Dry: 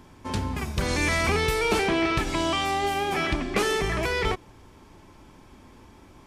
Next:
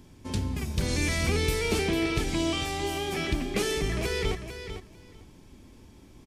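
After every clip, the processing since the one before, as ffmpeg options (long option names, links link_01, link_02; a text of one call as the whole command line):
ffmpeg -i in.wav -af "equalizer=frequency=1100:width=0.66:gain=-11.5,acontrast=87,aecho=1:1:448|896:0.335|0.0502,volume=-7dB" out.wav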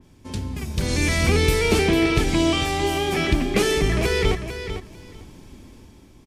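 ffmpeg -i in.wav -af "dynaudnorm=framelen=260:gausssize=7:maxgain=8.5dB,adynamicequalizer=threshold=0.01:dfrequency=3200:dqfactor=0.7:tfrequency=3200:tqfactor=0.7:attack=5:release=100:ratio=0.375:range=1.5:mode=cutabove:tftype=highshelf" out.wav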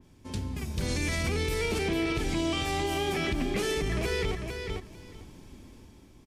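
ffmpeg -i in.wav -af "alimiter=limit=-15.5dB:level=0:latency=1:release=80,volume=-5dB" out.wav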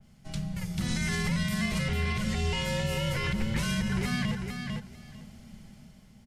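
ffmpeg -i in.wav -af "afreqshift=-250" out.wav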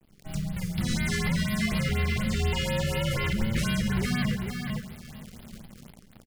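ffmpeg -i in.wav -filter_complex "[0:a]asplit=2[link_01][link_02];[link_02]adelay=139.9,volume=-14dB,highshelf=frequency=4000:gain=-3.15[link_03];[link_01][link_03]amix=inputs=2:normalize=0,acrusher=bits=9:dc=4:mix=0:aa=0.000001,afftfilt=real='re*(1-between(b*sr/1024,760*pow(7500/760,0.5+0.5*sin(2*PI*4.1*pts/sr))/1.41,760*pow(7500/760,0.5+0.5*sin(2*PI*4.1*pts/sr))*1.41))':imag='im*(1-between(b*sr/1024,760*pow(7500/760,0.5+0.5*sin(2*PI*4.1*pts/sr))/1.41,760*pow(7500/760,0.5+0.5*sin(2*PI*4.1*pts/sr))*1.41))':win_size=1024:overlap=0.75,volume=2.5dB" out.wav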